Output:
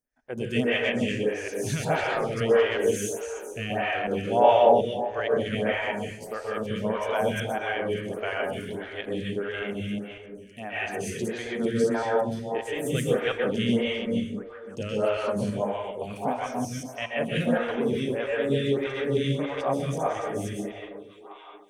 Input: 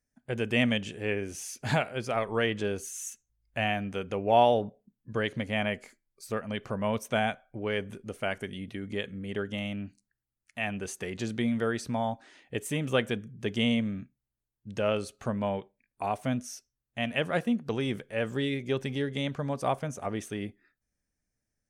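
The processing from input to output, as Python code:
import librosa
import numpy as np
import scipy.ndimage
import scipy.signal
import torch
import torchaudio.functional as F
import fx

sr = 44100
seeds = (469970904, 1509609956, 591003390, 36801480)

y = fx.reverse_delay(x, sr, ms=185, wet_db=-0.5)
y = fx.echo_stepped(y, sr, ms=715, hz=460.0, octaves=1.4, feedback_pct=70, wet_db=-12)
y = fx.rev_plate(y, sr, seeds[0], rt60_s=0.72, hf_ratio=0.7, predelay_ms=115, drr_db=-2.0)
y = fx.stagger_phaser(y, sr, hz=1.6)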